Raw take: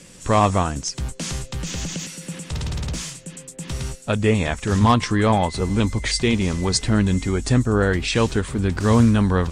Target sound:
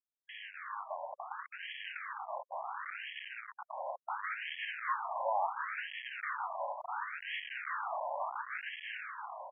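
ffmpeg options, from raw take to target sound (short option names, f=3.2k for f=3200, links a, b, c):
-filter_complex "[0:a]highpass=45,aeval=exprs='val(0)+0.00562*(sin(2*PI*60*n/s)+sin(2*PI*2*60*n/s)/2+sin(2*PI*3*60*n/s)/3+sin(2*PI*4*60*n/s)/4+sin(2*PI*5*60*n/s)/5)':c=same,acrossover=split=3500[a][b];[a]acrusher=samples=13:mix=1:aa=0.000001[c];[c][b]amix=inputs=2:normalize=0,aecho=1:1:345:0.355,asubboost=boost=6:cutoff=93,areverse,acompressor=threshold=-26dB:ratio=16,areverse,asuperstop=centerf=2100:order=12:qfactor=0.89,equalizer=f=370:t=o:w=0.68:g=13.5,asoftclip=type=tanh:threshold=-20.5dB,acrusher=bits=4:mix=0:aa=0.000001,dynaudnorm=f=180:g=13:m=8.5dB,afftfilt=real='re*between(b*sr/1024,750*pow(2400/750,0.5+0.5*sin(2*PI*0.71*pts/sr))/1.41,750*pow(2400/750,0.5+0.5*sin(2*PI*0.71*pts/sr))*1.41)':imag='im*between(b*sr/1024,750*pow(2400/750,0.5+0.5*sin(2*PI*0.71*pts/sr))/1.41,750*pow(2400/750,0.5+0.5*sin(2*PI*0.71*pts/sr))*1.41)':win_size=1024:overlap=0.75,volume=-5.5dB"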